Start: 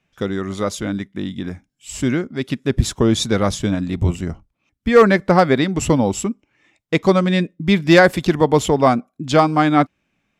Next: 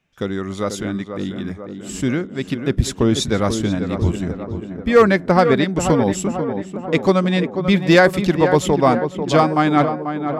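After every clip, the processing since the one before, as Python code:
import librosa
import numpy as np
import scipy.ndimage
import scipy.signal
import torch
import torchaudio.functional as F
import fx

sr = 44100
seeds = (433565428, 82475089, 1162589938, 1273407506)

y = fx.echo_tape(x, sr, ms=489, feedback_pct=70, wet_db=-6.5, lp_hz=1500.0, drive_db=0.0, wow_cents=35)
y = F.gain(torch.from_numpy(y), -1.0).numpy()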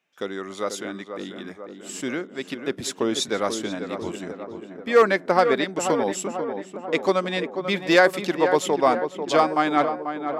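y = scipy.signal.sosfilt(scipy.signal.butter(2, 360.0, 'highpass', fs=sr, output='sos'), x)
y = F.gain(torch.from_numpy(y), -3.0).numpy()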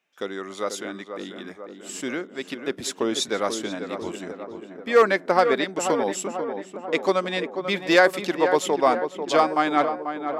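y = fx.peak_eq(x, sr, hz=110.0, db=-5.5, octaves=1.7)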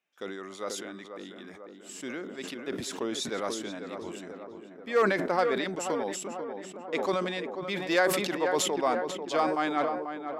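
y = fx.sustainer(x, sr, db_per_s=41.0)
y = F.gain(torch.from_numpy(y), -8.5).numpy()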